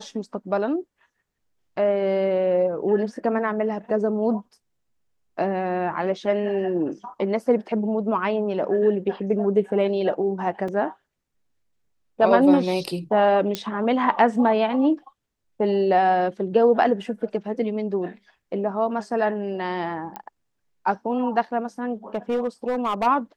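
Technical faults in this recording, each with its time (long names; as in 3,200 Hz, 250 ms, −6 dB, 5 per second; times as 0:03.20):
0:10.68: drop-out 4.2 ms
0:13.55: click −10 dBFS
0:20.16: click −19 dBFS
0:22.14–0:23.07: clipping −19 dBFS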